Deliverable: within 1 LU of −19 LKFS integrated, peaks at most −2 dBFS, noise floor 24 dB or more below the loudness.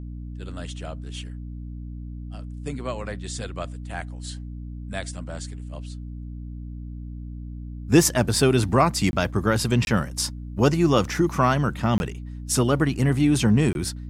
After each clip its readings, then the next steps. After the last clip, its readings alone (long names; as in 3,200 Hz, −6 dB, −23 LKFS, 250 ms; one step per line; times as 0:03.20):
number of dropouts 4; longest dropout 21 ms; mains hum 60 Hz; hum harmonics up to 300 Hz; level of the hum −32 dBFS; integrated loudness −23.0 LKFS; sample peak −4.5 dBFS; target loudness −19.0 LKFS
→ repair the gap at 0:09.11/0:09.85/0:11.98/0:13.73, 21 ms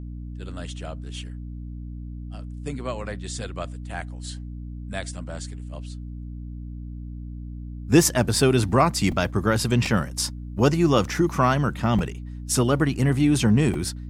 number of dropouts 0; mains hum 60 Hz; hum harmonics up to 300 Hz; level of the hum −32 dBFS
→ hum removal 60 Hz, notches 5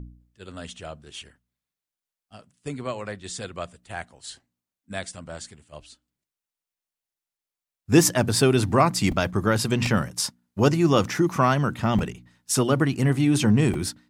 mains hum none found; integrated loudness −22.5 LKFS; sample peak −4.5 dBFS; target loudness −19.0 LKFS
→ level +3.5 dB
brickwall limiter −2 dBFS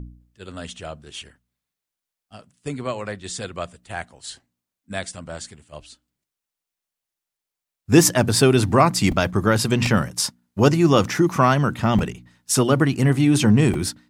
integrated loudness −19.0 LKFS; sample peak −2.0 dBFS; background noise floor −86 dBFS